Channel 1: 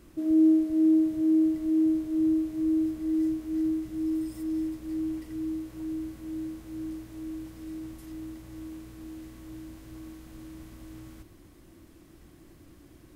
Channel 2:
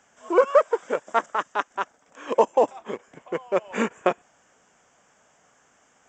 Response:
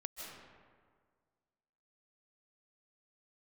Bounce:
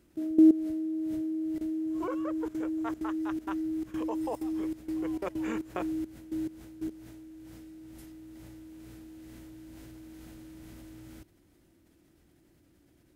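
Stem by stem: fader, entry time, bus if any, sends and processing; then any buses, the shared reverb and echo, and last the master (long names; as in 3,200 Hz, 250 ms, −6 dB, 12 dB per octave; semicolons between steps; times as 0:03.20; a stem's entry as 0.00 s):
+3.0 dB, 0.00 s, no send, high-pass filter 59 Hz 6 dB per octave; notch filter 1,100 Hz, Q 7.1
−7.0 dB, 1.70 s, no send, notch filter 560 Hz, Q 12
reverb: not used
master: output level in coarse steps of 16 dB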